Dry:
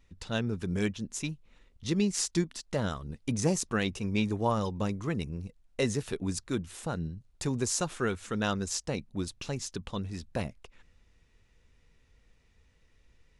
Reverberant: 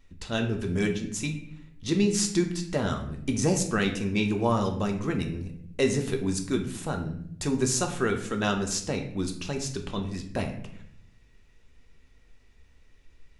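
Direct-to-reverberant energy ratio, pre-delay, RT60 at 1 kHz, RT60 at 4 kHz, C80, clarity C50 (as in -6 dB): 3.0 dB, 3 ms, 0.60 s, 0.50 s, 12.0 dB, 8.5 dB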